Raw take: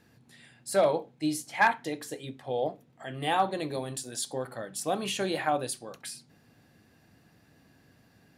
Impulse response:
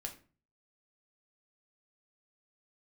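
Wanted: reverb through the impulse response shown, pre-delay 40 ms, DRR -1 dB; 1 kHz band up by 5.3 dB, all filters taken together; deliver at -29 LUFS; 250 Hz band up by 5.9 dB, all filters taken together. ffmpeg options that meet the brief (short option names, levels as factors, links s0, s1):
-filter_complex "[0:a]equalizer=f=250:t=o:g=7.5,equalizer=f=1000:t=o:g=6.5,asplit=2[s0][s1];[1:a]atrim=start_sample=2205,adelay=40[s2];[s1][s2]afir=irnorm=-1:irlink=0,volume=1.41[s3];[s0][s3]amix=inputs=2:normalize=0,volume=0.473"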